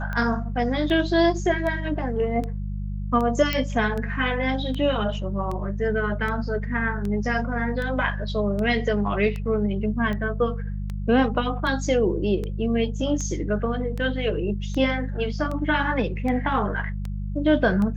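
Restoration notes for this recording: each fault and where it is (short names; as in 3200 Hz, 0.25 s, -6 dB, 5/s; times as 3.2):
hum 50 Hz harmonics 4 -29 dBFS
tick 78 rpm -19 dBFS
3.53 pop -10 dBFS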